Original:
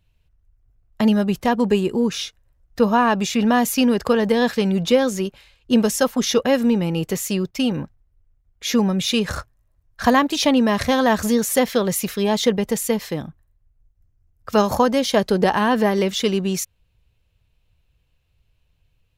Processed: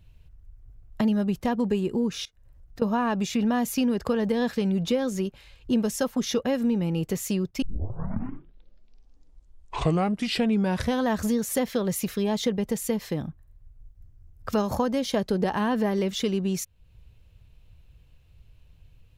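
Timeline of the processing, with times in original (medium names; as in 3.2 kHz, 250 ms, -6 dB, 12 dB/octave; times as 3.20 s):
2.25–2.82 s: compression 2.5:1, threshold -58 dBFS
7.62 s: tape start 3.44 s
whole clip: bass shelf 390 Hz +7 dB; compression 2:1, threshold -39 dBFS; trim +4 dB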